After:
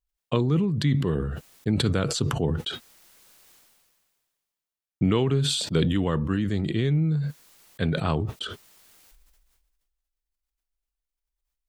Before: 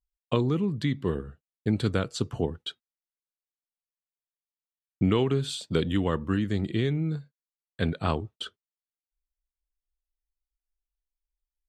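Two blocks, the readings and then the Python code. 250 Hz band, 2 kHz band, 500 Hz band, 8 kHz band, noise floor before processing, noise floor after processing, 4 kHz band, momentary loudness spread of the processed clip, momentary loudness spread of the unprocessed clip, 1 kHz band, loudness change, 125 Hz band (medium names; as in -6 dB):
+2.5 dB, +2.0 dB, +1.0 dB, +9.0 dB, under -85 dBFS, under -85 dBFS, +5.5 dB, 11 LU, 12 LU, +1.0 dB, +3.0 dB, +4.5 dB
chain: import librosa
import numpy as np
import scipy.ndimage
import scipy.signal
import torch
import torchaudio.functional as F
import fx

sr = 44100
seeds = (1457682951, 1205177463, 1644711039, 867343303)

y = fx.dynamic_eq(x, sr, hz=150.0, q=4.8, threshold_db=-44.0, ratio=4.0, max_db=7)
y = fx.sustainer(y, sr, db_per_s=31.0)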